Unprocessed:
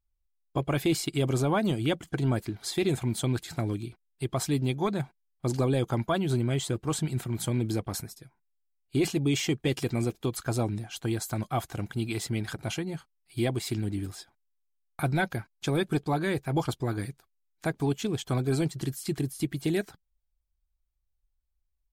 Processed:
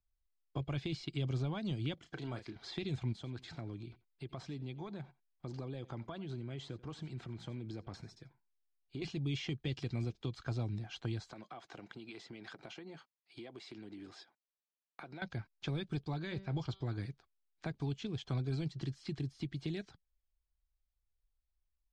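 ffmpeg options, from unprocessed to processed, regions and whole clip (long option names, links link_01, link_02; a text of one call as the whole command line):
ffmpeg -i in.wav -filter_complex "[0:a]asettb=1/sr,asplit=3[link_01][link_02][link_03];[link_01]atrim=end=1.944[link_04];[link_02]atrim=start=1.94:end=2.56,asetpts=PTS-STARTPTS,afade=type=in:duration=0.004:curve=qsin,afade=type=out:start_time=0.616:duration=0.004:curve=qsin,lowshelf=frequency=290:gain=-12,asplit=2[link_05][link_06];[link_06]adelay=33,volume=-9dB[link_07];[link_05][link_07]amix=inputs=2:normalize=0,atrim=end_sample=27342[link_08];[link_03]atrim=start=2.556[link_09];[link_04][link_08]acrossfade=duration=0.004:curve1=hsin:curve2=qsin[link_10];[link_10][link_09]acrossfade=duration=0.004:curve1=qsin:curve2=hsin,asettb=1/sr,asplit=3[link_11][link_12][link_13];[link_11]atrim=end=3.124[link_14];[link_12]atrim=start=3.12:end=9.02,asetpts=PTS-STARTPTS,afade=type=in:duration=0.004:curve=qsin,afade=type=out:start_time=5.896:duration=0.004:curve=qsin,acompressor=threshold=-39dB:ratio=2.5:attack=3.2:release=140:knee=1:detection=peak,aecho=1:1:87:0.0944,atrim=end_sample=260190[link_15];[link_13]atrim=start=9.016[link_16];[link_14][link_15]acrossfade=duration=0.004:curve1=hsin:curve2=qsin[link_17];[link_17][link_16]acrossfade=duration=0.004:curve1=qsin:curve2=hsin,asettb=1/sr,asplit=3[link_18][link_19][link_20];[link_18]atrim=end=11.314[link_21];[link_19]atrim=start=11.31:end=15.22,asetpts=PTS-STARTPTS,afade=type=in:duration=0.004:curve=qsin,afade=type=out:start_time=3.906:duration=0.004:curve=qsin,highpass=280,acompressor=threshold=-39dB:ratio=16:attack=3.2:release=140:knee=1:detection=peak[link_22];[link_20]atrim=start=15.216[link_23];[link_21][link_22]acrossfade=duration=0.004:curve1=hsin:curve2=qsin[link_24];[link_24][link_23]acrossfade=duration=0.004:curve1=qsin:curve2=hsin,asettb=1/sr,asplit=3[link_25][link_26][link_27];[link_25]atrim=end=16.224[link_28];[link_26]atrim=start=16.22:end=16.86,asetpts=PTS-STARTPTS,afade=type=in:duration=0.004:curve=qsin,afade=type=out:start_time=0.636:duration=0.004:curve=qsin,lowpass=frequency=7300:width=0.5412,lowpass=frequency=7300:width=1.3066,bandreject=frequency=193.3:width_type=h:width=4,bandreject=frequency=386.6:width_type=h:width=4,bandreject=frequency=579.9:width_type=h:width=4,bandreject=frequency=773.2:width_type=h:width=4,bandreject=frequency=966.5:width_type=h:width=4,bandreject=frequency=1159.8:width_type=h:width=4,bandreject=frequency=1353.1:width_type=h:width=4,bandreject=frequency=1546.4:width_type=h:width=4,bandreject=frequency=1739.7:width_type=h:width=4,bandreject=frequency=1933:width_type=h:width=4,bandreject=frequency=2126.3:width_type=h:width=4,bandreject=frequency=2319.6:width_type=h:width=4,bandreject=frequency=2512.9:width_type=h:width=4,bandreject=frequency=2706.2:width_type=h:width=4,bandreject=frequency=2899.5:width_type=h:width=4,bandreject=frequency=3092.8:width_type=h:width=4,bandreject=frequency=3286.1:width_type=h:width=4,bandreject=frequency=3479.4:width_type=h:width=4,bandreject=frequency=3672.7:width_type=h:width=4,bandreject=frequency=3866:width_type=h:width=4,bandreject=frequency=4059.3:width_type=h:width=4,bandreject=frequency=4252.6:width_type=h:width=4,bandreject=frequency=4445.9:width_type=h:width=4,bandreject=frequency=4639.2:width_type=h:width=4,bandreject=frequency=4832.5:width_type=h:width=4,bandreject=frequency=5025.8:width_type=h:width=4[link_29];[link_27]atrim=start=16.856[link_30];[link_28][link_29]acrossfade=duration=0.004:curve1=hsin:curve2=qsin[link_31];[link_31][link_30]acrossfade=duration=0.004:curve1=qsin:curve2=hsin,acrossover=split=3700[link_32][link_33];[link_33]acompressor=threshold=-43dB:ratio=4:attack=1:release=60[link_34];[link_32][link_34]amix=inputs=2:normalize=0,lowpass=frequency=5400:width=0.5412,lowpass=frequency=5400:width=1.3066,acrossover=split=170|3000[link_35][link_36][link_37];[link_36]acompressor=threshold=-37dB:ratio=6[link_38];[link_35][link_38][link_37]amix=inputs=3:normalize=0,volume=-5dB" out.wav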